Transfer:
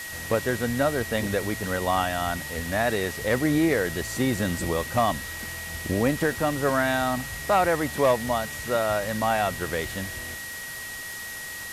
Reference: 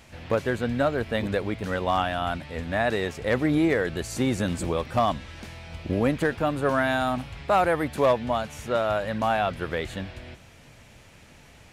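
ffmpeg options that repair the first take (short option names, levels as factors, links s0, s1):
-af "adeclick=t=4,bandreject=f=1900:w=30,afwtdn=0.013"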